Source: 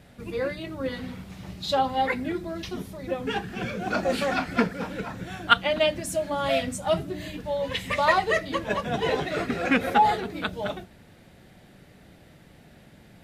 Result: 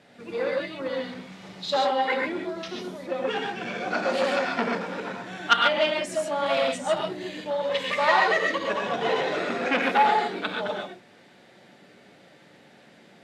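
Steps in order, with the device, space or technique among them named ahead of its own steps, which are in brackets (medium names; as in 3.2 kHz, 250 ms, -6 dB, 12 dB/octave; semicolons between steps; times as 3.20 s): 1.76–2.22 s: high-pass 220 Hz 24 dB/octave; gated-style reverb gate 160 ms rising, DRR 0 dB; public-address speaker with an overloaded transformer (transformer saturation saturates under 2 kHz; band-pass 270–6700 Hz)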